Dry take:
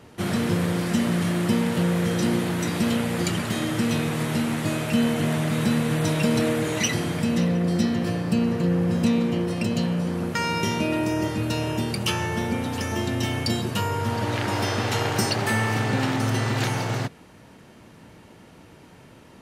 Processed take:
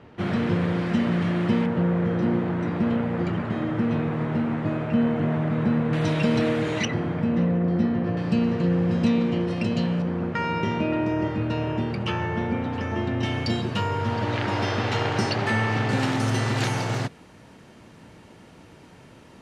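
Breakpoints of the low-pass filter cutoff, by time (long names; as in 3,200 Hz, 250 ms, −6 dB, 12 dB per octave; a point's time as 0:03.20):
2,800 Hz
from 0:01.66 1,500 Hz
from 0:05.93 3,900 Hz
from 0:06.85 1,600 Hz
from 0:08.17 4,100 Hz
from 0:10.02 2,200 Hz
from 0:13.23 4,100 Hz
from 0:15.89 9,700 Hz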